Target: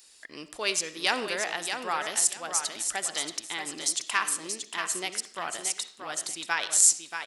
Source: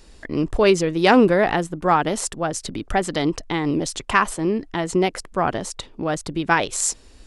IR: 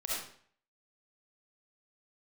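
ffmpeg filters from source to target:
-filter_complex "[0:a]aderivative,aecho=1:1:631|1262|1893:0.447|0.103|0.0236,asplit=2[a][b];[1:a]atrim=start_sample=2205,lowpass=5.2k[c];[b][c]afir=irnorm=-1:irlink=0,volume=-14.5dB[d];[a][d]amix=inputs=2:normalize=0,volume=3.5dB"

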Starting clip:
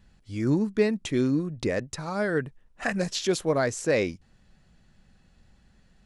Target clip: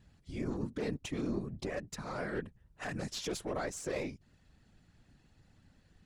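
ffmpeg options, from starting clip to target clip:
-filter_complex "[0:a]asplit=2[a][b];[b]acompressor=threshold=-38dB:ratio=6,volume=0.5dB[c];[a][c]amix=inputs=2:normalize=0,aeval=exprs='0.355*(cos(1*acos(clip(val(0)/0.355,-1,1)))-cos(1*PI/2))+0.02*(cos(3*acos(clip(val(0)/0.355,-1,1)))-cos(3*PI/2))+0.0631*(cos(4*acos(clip(val(0)/0.355,-1,1)))-cos(4*PI/2))+0.0562*(cos(6*acos(clip(val(0)/0.355,-1,1)))-cos(6*PI/2))':c=same,alimiter=limit=-19dB:level=0:latency=1:release=17,afftfilt=real='hypot(re,im)*cos(2*PI*random(0))':imag='hypot(re,im)*sin(2*PI*random(1))':win_size=512:overlap=0.75,volume=-3dB"

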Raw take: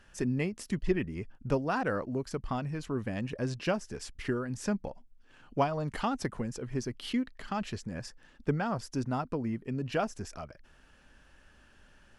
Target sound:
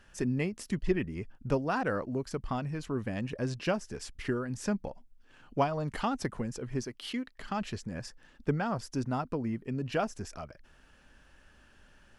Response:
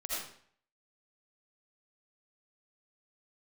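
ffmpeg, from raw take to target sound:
-filter_complex "[0:a]asettb=1/sr,asplit=3[a][b][c];[a]atrim=end=6.844[d];[b]atrim=start=6.84:end=7.38,asetpts=PTS-STARTPTS,afade=t=in:d=0.004:c=qsin,afade=t=out:st=0.536:d=0.004:c=qsin,lowshelf=f=210:g=-12[e];[c]atrim=start=7.376[f];[d][e]acrossfade=d=0.004:c1=hsin:c2=qsin[g];[g][f]acrossfade=d=0.004:c1=qsin:c2=hsin"

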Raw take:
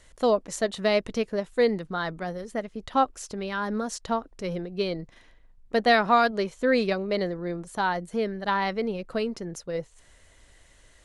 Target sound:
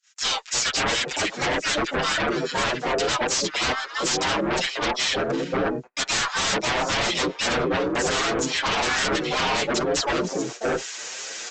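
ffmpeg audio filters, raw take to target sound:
-filter_complex "[0:a]highpass=510,acrossover=split=1500[a][b];[a]adelay=530[c];[c][b]amix=inputs=2:normalize=0,areverse,acompressor=mode=upward:threshold=-49dB:ratio=2.5,areverse,asetrate=42336,aresample=44100,aemphasis=mode=production:type=50fm,asplit=4[d][e][f][g];[e]asetrate=35002,aresample=44100,atempo=1.25992,volume=-2dB[h];[f]asetrate=37084,aresample=44100,atempo=1.18921,volume=-3dB[i];[g]asetrate=58866,aresample=44100,atempo=0.749154,volume=-3dB[j];[d][h][i][j]amix=inputs=4:normalize=0,acompressor=threshold=-26dB:ratio=5,agate=range=-42dB:threshold=-48dB:ratio=16:detection=peak,aresample=16000,aeval=exprs='0.141*sin(PI/2*5.01*val(0)/0.141)':c=same,aresample=44100,asplit=2[k][l];[l]adelay=6.9,afreqshift=2.3[m];[k][m]amix=inputs=2:normalize=1"

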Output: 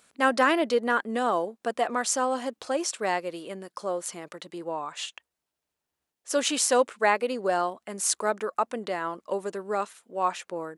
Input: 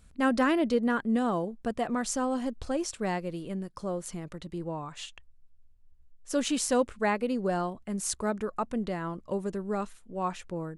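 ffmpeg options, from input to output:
-af "highpass=470,volume=6.5dB"

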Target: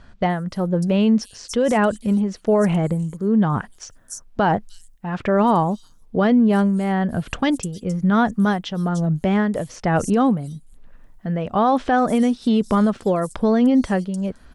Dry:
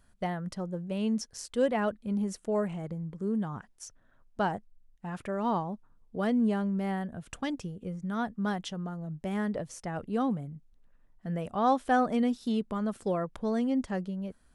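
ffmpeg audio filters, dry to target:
-filter_complex "[0:a]tremolo=f=1.1:d=0.63,acrossover=split=5700[a][b];[b]adelay=300[c];[a][c]amix=inputs=2:normalize=0,alimiter=level_in=27dB:limit=-1dB:release=50:level=0:latency=1,volume=-9dB"

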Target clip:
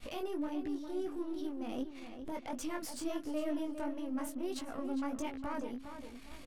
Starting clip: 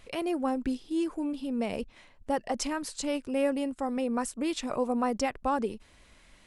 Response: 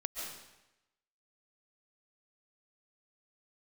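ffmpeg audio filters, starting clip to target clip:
-filter_complex "[0:a]aeval=exprs='if(lt(val(0),0),0.447*val(0),val(0))':c=same,agate=range=-33dB:threshold=-54dB:ratio=3:detection=peak,equalizer=f=230:t=o:w=0.53:g=8.5,acompressor=threshold=-47dB:ratio=3,alimiter=level_in=15.5dB:limit=-24dB:level=0:latency=1:release=12,volume=-15.5dB,flanger=delay=18:depth=6.5:speed=1.5,asetrate=49501,aresample=44100,atempo=0.890899,asplit=2[a][b];[b]adelay=407,lowpass=f=4.3k:p=1,volume=-9dB,asplit=2[c][d];[d]adelay=407,lowpass=f=4.3k:p=1,volume=0.36,asplit=2[e][f];[f]adelay=407,lowpass=f=4.3k:p=1,volume=0.36,asplit=2[g][h];[h]adelay=407,lowpass=f=4.3k:p=1,volume=0.36[i];[a][c][e][g][i]amix=inputs=5:normalize=0,volume=10.5dB"

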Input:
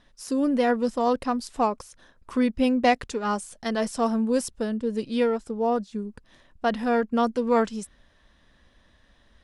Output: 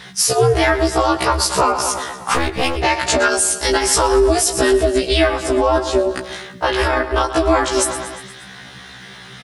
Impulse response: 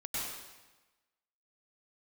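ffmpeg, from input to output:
-filter_complex "[0:a]asplit=2[a][b];[b]adelay=20,volume=-13.5dB[c];[a][c]amix=inputs=2:normalize=0,aecho=1:1:117|234|351|468|585:0.141|0.0819|0.0475|0.0276|0.016,aeval=exprs='val(0)*sin(2*PI*170*n/s)':c=same,highpass=45,acompressor=threshold=-32dB:ratio=6,asettb=1/sr,asplit=3[d][e][f];[d]atrim=end=2.344[g];[e]atrim=start=2.34:end=2.76,asetpts=PTS-STARTPTS,afade=t=in:d=0.004:c=qsin,afade=t=out:st=0.416:d=0.004:c=qsin,aeval=exprs='clip(val(0),-1,0.00562)':c=same[h];[f]atrim=start=2.756[i];[g][h]acrossfade=d=0.004:c1=hsin:c2=qsin[j];[j][i]acrossfade=d=0.004:c1=qsin:c2=hsin,asettb=1/sr,asplit=3[k][l][m];[k]atrim=end=3.284[n];[l]atrim=start=3.28:end=3.75,asetpts=PTS-STARTPTS,afade=t=in:d=0.004:c=qsin,afade=t=out:st=0.466:d=0.004:c=qsin,equalizer=f=1.3k:t=o:w=2.2:g=-10[o];[m]atrim=start=3.746[p];[n][o]acrossfade=d=0.004:c1=hsin:c2=qsin[q];[q][p]acrossfade=d=0.004:c1=qsin:c2=hsin,asettb=1/sr,asplit=3[r][s][t];[r]atrim=end=6.874[u];[s]atrim=start=6.87:end=7.35,asetpts=PTS-STARTPTS,afade=t=in:d=0.004:c=qsin,afade=t=out:st=0.476:d=0.004:c=qsin,tremolo=f=29:d=0.889[v];[t]atrim=start=7.346[w];[u][v]acrossfade=d=0.004:c1=hsin:c2=qsin[x];[x][w]acrossfade=d=0.004:c1=qsin:c2=hsin,tiltshelf=f=700:g=-7,alimiter=level_in=26.5dB:limit=-1dB:release=50:level=0:latency=1,afftfilt=real='re*1.73*eq(mod(b,3),0)':imag='im*1.73*eq(mod(b,3),0)':win_size=2048:overlap=0.75"

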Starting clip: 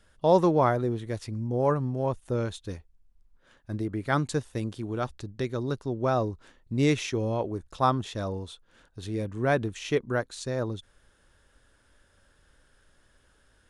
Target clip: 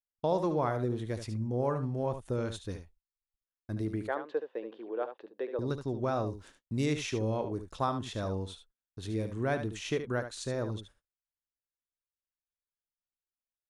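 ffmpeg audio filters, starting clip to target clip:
-filter_complex "[0:a]agate=range=-44dB:threshold=-51dB:ratio=16:detection=peak,asettb=1/sr,asplit=3[a][b][c];[a]atrim=end=6.264[d];[b]atrim=start=6.26:end=6.86,asetpts=PTS-STARTPTS,afade=t=in:d=0.004:c=qsin,afade=t=out:st=0.596:d=0.004:c=qsin,aemphasis=mode=production:type=cd[e];[c]atrim=start=6.856[f];[d][e]acrossfade=d=0.004:c1=hsin:c2=qsin[g];[g][f]acrossfade=d=0.004:c1=qsin:c2=hsin,acompressor=threshold=-26dB:ratio=2.5,asettb=1/sr,asplit=3[h][i][j];[h]atrim=end=4.074[k];[i]atrim=start=4.07:end=5.59,asetpts=PTS-STARTPTS,afade=t=in:d=0.004:c=qsin,afade=t=out:st=1.516:d=0.004:c=qsin,highpass=f=370:w=0.5412,highpass=f=370:w=1.3066,equalizer=f=490:t=q:w=4:g=7,equalizer=f=1.3k:t=q:w=4:g=-6,equalizer=f=2.2k:t=q:w=4:g=-8,lowpass=f=2.6k:w=0.5412,lowpass=f=2.6k:w=1.3066[l];[j]atrim=start=5.586[m];[k][l]acrossfade=d=0.004:c1=hsin:c2=qsin[n];[n][m]acrossfade=d=0.004:c1=qsin:c2=hsin,asplit=2[o][p];[p]aecho=0:1:73:0.335[q];[o][q]amix=inputs=2:normalize=0,volume=-2.5dB"

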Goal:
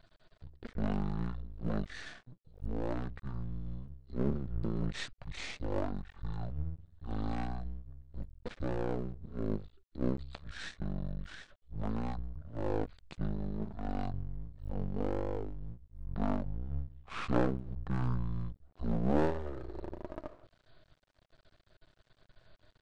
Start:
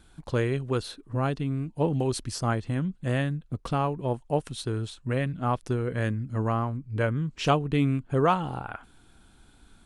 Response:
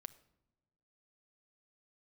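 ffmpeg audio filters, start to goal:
-af "bandreject=f=50:t=h:w=6,bandreject=f=100:t=h:w=6,bandreject=f=150:t=h:w=6,bandreject=f=200:t=h:w=6,aeval=exprs='max(val(0),0)':c=same,asetrate=19051,aresample=44100,volume=-3.5dB"

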